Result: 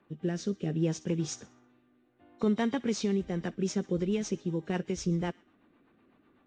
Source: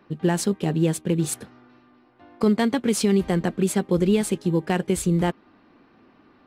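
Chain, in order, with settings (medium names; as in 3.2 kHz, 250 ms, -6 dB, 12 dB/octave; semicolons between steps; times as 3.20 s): knee-point frequency compression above 2.9 kHz 1.5:1; feedback echo behind a high-pass 63 ms, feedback 43%, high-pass 1.8 kHz, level -17.5 dB; rotary cabinet horn 0.65 Hz, later 8 Hz, at 3.09 s; trim -7.5 dB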